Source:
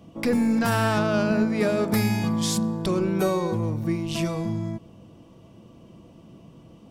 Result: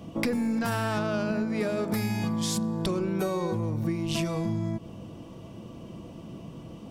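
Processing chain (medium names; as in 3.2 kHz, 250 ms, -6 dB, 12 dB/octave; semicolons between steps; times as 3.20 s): compression 10:1, threshold -31 dBFS, peak gain reduction 13.5 dB; trim +6 dB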